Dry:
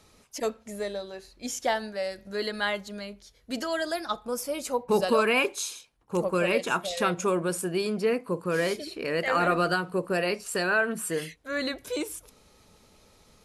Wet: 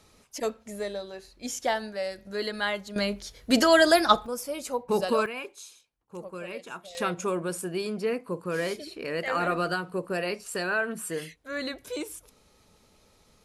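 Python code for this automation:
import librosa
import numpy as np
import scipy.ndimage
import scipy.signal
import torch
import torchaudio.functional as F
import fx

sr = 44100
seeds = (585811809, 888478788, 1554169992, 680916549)

y = fx.gain(x, sr, db=fx.steps((0.0, -0.5), (2.96, 11.0), (4.26, -2.0), (5.26, -13.0), (6.95, -3.0)))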